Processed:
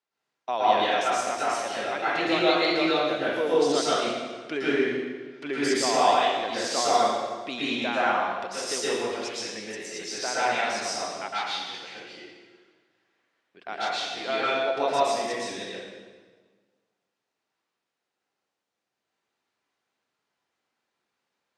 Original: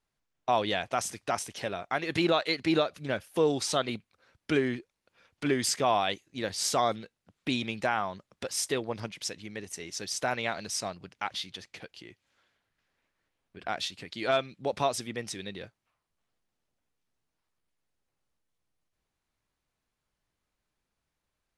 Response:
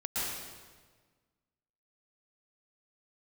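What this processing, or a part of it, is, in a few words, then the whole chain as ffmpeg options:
supermarket ceiling speaker: -filter_complex "[0:a]highpass=310,lowpass=6400[link_01];[1:a]atrim=start_sample=2205[link_02];[link_01][link_02]afir=irnorm=-1:irlink=0"

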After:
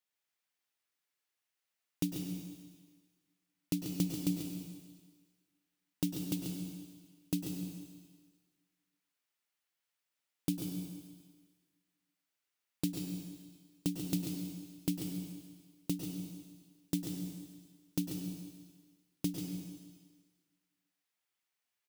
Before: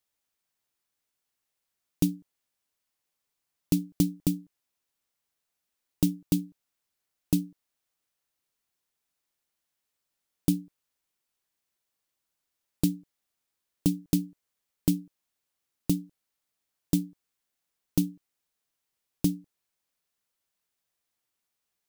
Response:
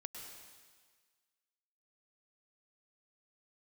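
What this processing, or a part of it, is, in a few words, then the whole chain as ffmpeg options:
PA in a hall: -filter_complex "[0:a]highpass=frequency=130:poles=1,equalizer=frequency=2200:width_type=o:width=1.8:gain=5.5,aecho=1:1:138:0.355[link_01];[1:a]atrim=start_sample=2205[link_02];[link_01][link_02]afir=irnorm=-1:irlink=0,volume=-3dB"

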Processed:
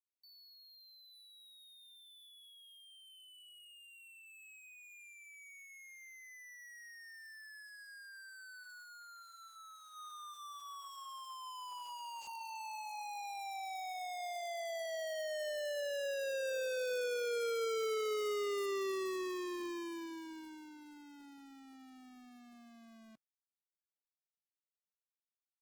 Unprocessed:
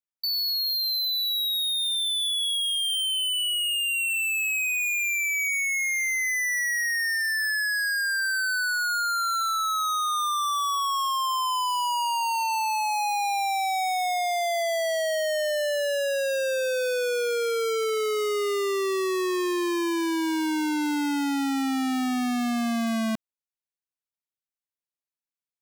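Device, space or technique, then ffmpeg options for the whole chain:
video call: -filter_complex "[0:a]asplit=3[link_01][link_02][link_03];[link_01]afade=type=out:start_time=8.81:duration=0.02[link_04];[link_02]equalizer=frequency=2100:width_type=o:width=2.7:gain=-2,afade=type=in:start_time=8.81:duration=0.02,afade=type=out:start_time=9.91:duration=0.02[link_05];[link_03]afade=type=in:start_time=9.91:duration=0.02[link_06];[link_04][link_05][link_06]amix=inputs=3:normalize=0,highpass=110,dynaudnorm=framelen=990:gausssize=11:maxgain=7dB,agate=range=-50dB:threshold=-15dB:ratio=16:detection=peak,volume=16.5dB" -ar 48000 -c:a libopus -b:a 16k

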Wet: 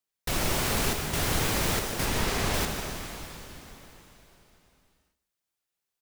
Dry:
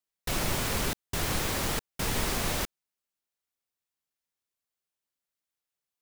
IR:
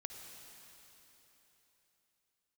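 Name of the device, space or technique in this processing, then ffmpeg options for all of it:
cave: -filter_complex "[0:a]asettb=1/sr,asplit=3[link_01][link_02][link_03];[link_01]atrim=end=2.054[link_04];[link_02]atrim=start=2.05:end=2.54,asetpts=PTS-STARTPTS,afade=type=in:duration=0.004:curve=qsin,afade=type=out:start_time=0.486:duration=0.004:curve=qsin,highshelf=frequency=8800:gain=-9.5[link_05];[link_03]atrim=start=2.536[link_06];[link_04][link_05]acrossfade=duration=0.004:curve1=hsin:curve2=qsin[link_07];[link_07][link_06]acrossfade=duration=0.004:curve1=qsin:curve2=hsin,aecho=1:1:151:0.188[link_08];[1:a]atrim=start_sample=2205[link_09];[link_08][link_09]afir=irnorm=-1:irlink=0,volume=6dB"

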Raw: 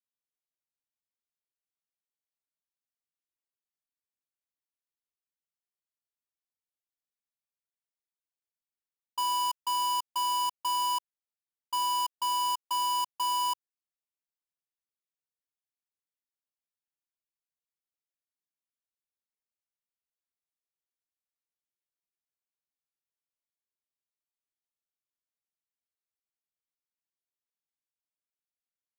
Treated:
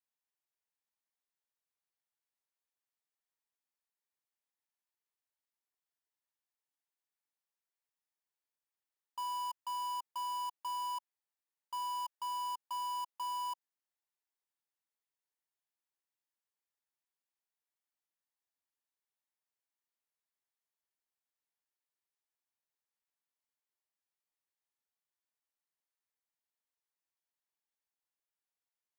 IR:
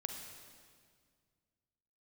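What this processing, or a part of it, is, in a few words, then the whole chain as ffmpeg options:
laptop speaker: -af "highpass=frequency=290:width=0.5412,highpass=frequency=290:width=1.3066,equalizer=frequency=900:width_type=o:width=0.58:gain=6.5,equalizer=frequency=1800:width_type=o:width=0.42:gain=4.5,alimiter=level_in=7.5dB:limit=-24dB:level=0:latency=1,volume=-7.5dB,volume=-2.5dB"

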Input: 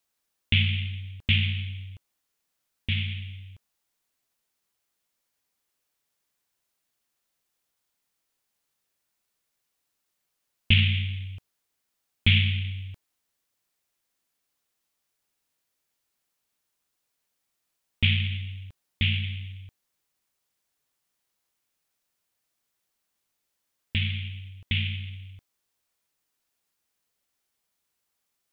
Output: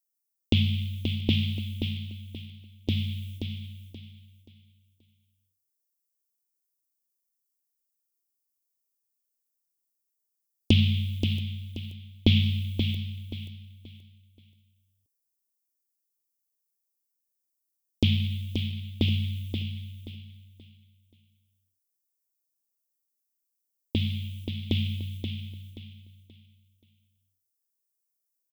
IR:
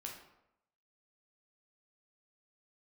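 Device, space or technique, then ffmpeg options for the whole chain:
filtered reverb send: -filter_complex "[0:a]asplit=2[link_01][link_02];[link_02]highpass=frequency=570:poles=1,lowpass=3300[link_03];[1:a]atrim=start_sample=2205[link_04];[link_03][link_04]afir=irnorm=-1:irlink=0,volume=-6.5dB[link_05];[link_01][link_05]amix=inputs=2:normalize=0,aemphasis=mode=production:type=50kf,agate=range=-24dB:threshold=-40dB:ratio=16:detection=peak,firequalizer=gain_entry='entry(150,0);entry(290,14);entry(1600,-23);entry(5000,9)':delay=0.05:min_phase=1,aecho=1:1:529|1058|1587|2116:0.447|0.134|0.0402|0.0121"

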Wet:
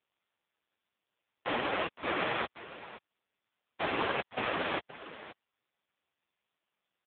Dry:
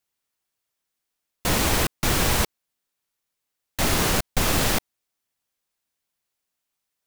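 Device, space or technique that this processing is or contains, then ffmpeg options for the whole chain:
satellite phone: -af "highpass=320,lowpass=3300,aecho=1:1:522:0.168" -ar 8000 -c:a libopencore_amrnb -b:a 4750

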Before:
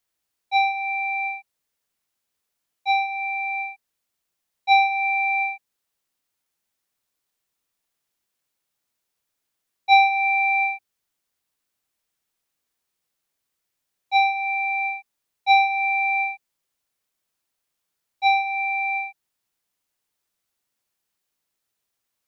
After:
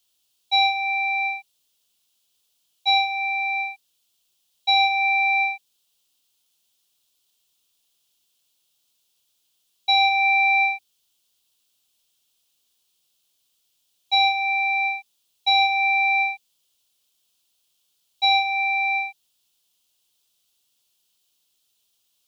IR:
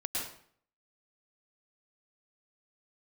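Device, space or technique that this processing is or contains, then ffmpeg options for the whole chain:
over-bright horn tweeter: -af "highshelf=frequency=2500:width_type=q:width=3:gain=7.5,alimiter=limit=-12dB:level=0:latency=1,volume=2dB"

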